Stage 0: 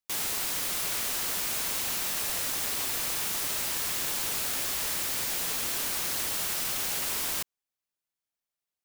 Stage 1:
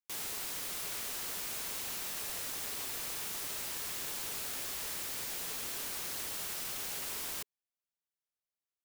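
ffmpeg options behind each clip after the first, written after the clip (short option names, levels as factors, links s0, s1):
-af "equalizer=f=420:w=4.5:g=3,volume=0.376"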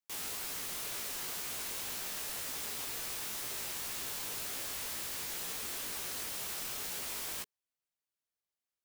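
-af "flanger=delay=15:depth=6.9:speed=2,volume=1.41"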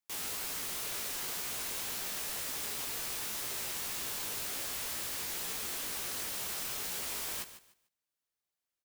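-af "aecho=1:1:148|296|444:0.224|0.0515|0.0118,volume=1.19"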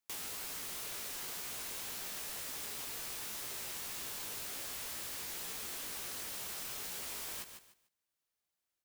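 -af "acompressor=threshold=0.00891:ratio=4,volume=1.12"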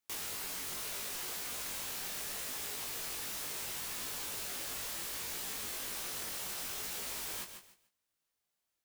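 -af "flanger=delay=19:depth=2.8:speed=0.73,volume=1.88"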